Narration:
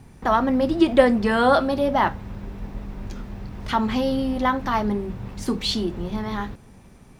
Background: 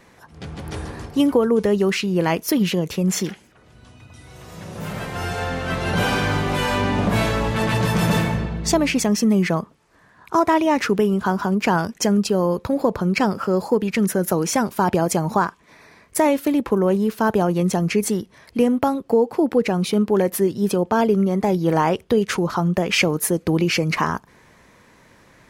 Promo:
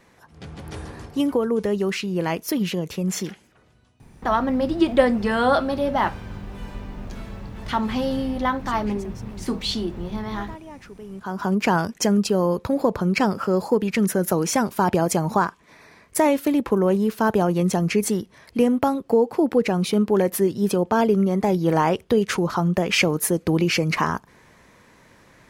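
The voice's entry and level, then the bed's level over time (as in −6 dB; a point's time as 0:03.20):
4.00 s, −1.5 dB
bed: 0:03.60 −4.5 dB
0:04.11 −23 dB
0:11.00 −23 dB
0:11.48 −1 dB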